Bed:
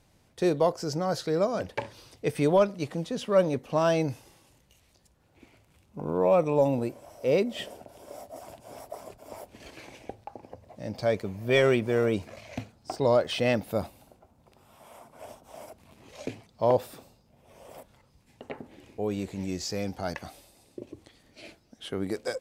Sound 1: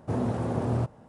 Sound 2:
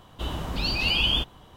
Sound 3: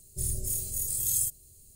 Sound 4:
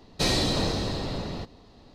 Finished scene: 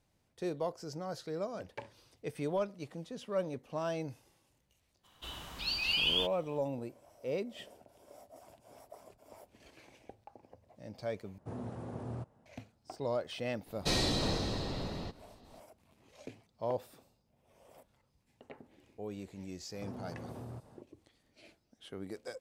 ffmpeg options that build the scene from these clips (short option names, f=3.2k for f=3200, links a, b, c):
-filter_complex "[1:a]asplit=2[a][b];[0:a]volume=-12dB[c];[2:a]tiltshelf=f=970:g=-7.5[d];[b]acompressor=threshold=-36dB:ratio=6:attack=3.2:release=140:knee=1:detection=peak[e];[c]asplit=2[f][g];[f]atrim=end=11.384[h];[a]atrim=end=1.08,asetpts=PTS-STARTPTS,volume=-14dB[i];[g]atrim=start=12.456[j];[d]atrim=end=1.56,asetpts=PTS-STARTPTS,volume=-12.5dB,afade=t=in:d=0.02,afade=t=out:st=1.54:d=0.02,adelay=5030[k];[4:a]atrim=end=1.94,asetpts=PTS-STARTPTS,volume=-6.5dB,afade=t=in:d=0.004:c=hsin,afade=t=out:st=1.936:d=0.004:c=hsin,adelay=13660[l];[e]atrim=end=1.08,asetpts=PTS-STARTPTS,volume=-6dB,afade=t=in:d=0.004:c=hsin,afade=t=out:st=1.076:d=0.004:c=hsin,adelay=19740[m];[h][i]acrossfade=d=0.004:c1=hsin:c2=hsin[n];[n][j]acrossfade=d=0.004:c1=hsin:c2=hsin[o];[o][k][l][m]amix=inputs=4:normalize=0"